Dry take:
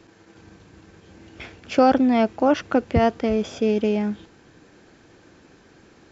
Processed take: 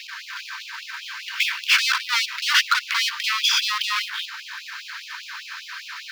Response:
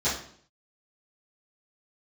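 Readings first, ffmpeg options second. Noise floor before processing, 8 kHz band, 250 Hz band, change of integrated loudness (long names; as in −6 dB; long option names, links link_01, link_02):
−54 dBFS, can't be measured, below −40 dB, 0.0 dB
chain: -filter_complex "[0:a]bass=frequency=250:gain=-2,treble=frequency=4000:gain=-8,asplit=2[link_01][link_02];[link_02]highpass=frequency=720:poles=1,volume=33dB,asoftclip=type=tanh:threshold=-6.5dB[link_03];[link_01][link_03]amix=inputs=2:normalize=0,lowpass=frequency=1300:poles=1,volume=-6dB,equalizer=frequency=4800:width_type=o:width=1.5:gain=14.5,acrossover=split=160|640|1400[link_04][link_05][link_06][link_07];[link_07]acrusher=bits=4:mode=log:mix=0:aa=0.000001[link_08];[link_04][link_05][link_06][link_08]amix=inputs=4:normalize=0,afftfilt=real='re*gte(b*sr/1024,860*pow(2500/860,0.5+0.5*sin(2*PI*5*pts/sr)))':imag='im*gte(b*sr/1024,860*pow(2500/860,0.5+0.5*sin(2*PI*5*pts/sr)))':win_size=1024:overlap=0.75"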